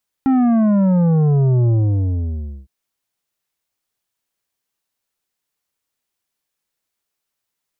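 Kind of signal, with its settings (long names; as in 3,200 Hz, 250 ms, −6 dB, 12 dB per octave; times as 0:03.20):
bass drop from 270 Hz, over 2.41 s, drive 9 dB, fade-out 0.98 s, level −12.5 dB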